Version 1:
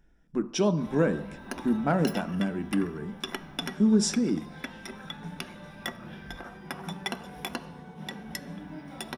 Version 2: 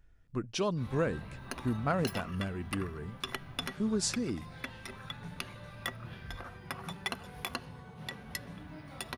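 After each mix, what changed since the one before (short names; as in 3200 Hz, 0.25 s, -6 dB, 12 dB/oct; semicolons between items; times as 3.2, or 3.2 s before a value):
reverb: off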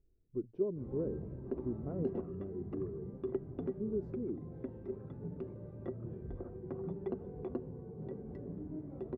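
speech -11.0 dB; master: add synth low-pass 390 Hz, resonance Q 4.3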